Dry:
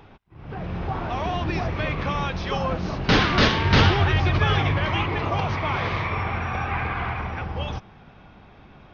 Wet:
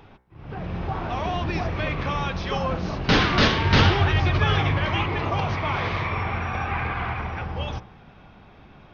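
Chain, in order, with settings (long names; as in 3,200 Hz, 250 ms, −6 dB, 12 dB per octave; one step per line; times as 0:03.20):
hum removal 63.09 Hz, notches 36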